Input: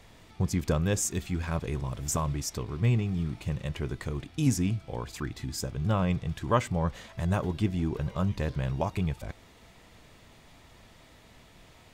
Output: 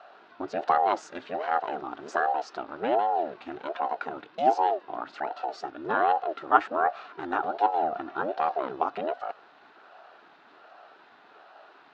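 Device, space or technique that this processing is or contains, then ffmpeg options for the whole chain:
voice changer toy: -filter_complex "[0:a]aeval=exprs='val(0)*sin(2*PI*410*n/s+410*0.6/1.3*sin(2*PI*1.3*n/s))':channel_layout=same,highpass=490,equalizer=frequency=510:width_type=q:width=4:gain=-8,equalizer=frequency=750:width_type=q:width=4:gain=6,equalizer=frequency=1400:width_type=q:width=4:gain=8,equalizer=frequency=2200:width_type=q:width=4:gain=-8,equalizer=frequency=3200:width_type=q:width=4:gain=-6,lowpass=frequency=3600:width=0.5412,lowpass=frequency=3600:width=1.3066,asettb=1/sr,asplit=3[link_01][link_02][link_03];[link_01]atrim=end=5.274[link_04];[link_02]atrim=start=5.27:end=5.68,asetpts=PTS-STARTPTS,afade=type=in:duration=0.004:curve=qsin,afade=type=out:start_time=0.406:duration=0.004:curve=qsin,highpass=170[link_05];[link_03]atrim=start=5.676[link_06];[link_04][link_05]acrossfade=duration=0.004:curve1=hsin:curve2=qsin[link_07];[link_07][link_06]acrossfade=duration=0.004:curve1=qsin:curve2=hsin,volume=6dB"

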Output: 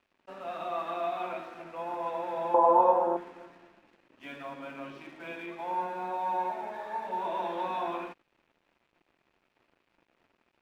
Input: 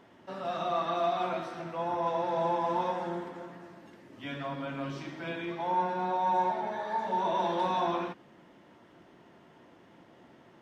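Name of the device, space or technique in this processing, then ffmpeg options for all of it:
pocket radio on a weak battery: -filter_complex "[0:a]highpass=260,lowpass=3100,aeval=exprs='sgn(val(0))*max(abs(val(0))-0.00158,0)':channel_layout=same,equalizer=frequency=2500:width_type=o:width=0.22:gain=7,asettb=1/sr,asplit=3[link_01][link_02][link_03];[link_01]atrim=end=2.544[link_04];[link_02]atrim=start=2.54:end=3.17,asetpts=PTS-STARTPTS,afade=type=in:duration=0.004:curve=qsin,afade=type=out:start_time=0.626:duration=0.004:curve=qsin,equalizer=frequency=125:width_type=o:width=1:gain=-3,equalizer=frequency=250:width_type=o:width=1:gain=4,equalizer=frequency=500:width_type=o:width=1:gain=12,equalizer=frequency=1000:width_type=o:width=1:gain=12,equalizer=frequency=2000:width_type=o:width=1:gain=-9,equalizer=frequency=4000:width_type=o:width=1:gain=-6[link_05];[link_03]atrim=start=3.166[link_06];[link_04][link_05]acrossfade=duration=0.004:curve1=hsin:curve2=qsin[link_07];[link_07][link_06]acrossfade=duration=0.004:curve1=qsin:curve2=hsin,volume=-3dB"

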